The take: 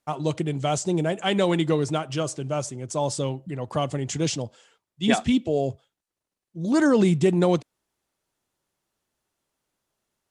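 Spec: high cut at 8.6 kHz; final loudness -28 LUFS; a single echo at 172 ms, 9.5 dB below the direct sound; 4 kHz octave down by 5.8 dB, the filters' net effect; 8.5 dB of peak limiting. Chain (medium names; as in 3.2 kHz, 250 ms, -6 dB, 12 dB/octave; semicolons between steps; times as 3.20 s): low-pass 8.6 kHz; peaking EQ 4 kHz -8 dB; peak limiter -15.5 dBFS; delay 172 ms -9.5 dB; trim -1.5 dB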